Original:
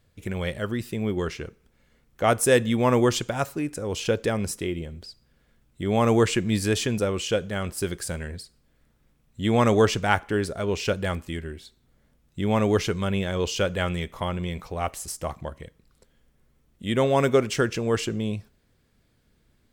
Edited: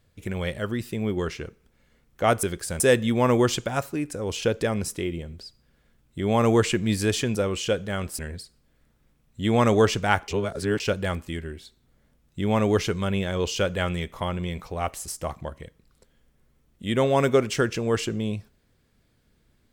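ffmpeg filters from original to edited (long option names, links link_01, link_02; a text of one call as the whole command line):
ffmpeg -i in.wav -filter_complex "[0:a]asplit=6[link_01][link_02][link_03][link_04][link_05][link_06];[link_01]atrim=end=2.432[link_07];[link_02]atrim=start=7.818:end=8.192[link_08];[link_03]atrim=start=2.428:end=7.822[link_09];[link_04]atrim=start=8.188:end=10.282[link_10];[link_05]atrim=start=10.278:end=10.802,asetpts=PTS-STARTPTS,areverse[link_11];[link_06]atrim=start=10.798[link_12];[link_07][link_08]acrossfade=duration=0.004:curve1=hsin:curve2=hsin[link_13];[link_13][link_09]acrossfade=duration=0.004:curve1=hsin:curve2=hsin[link_14];[link_14][link_10]acrossfade=duration=0.004:curve1=hsin:curve2=hsin[link_15];[link_15][link_11]acrossfade=duration=0.004:curve1=hsin:curve2=hsin[link_16];[link_16][link_12]acrossfade=duration=0.004:curve1=hsin:curve2=hsin" out.wav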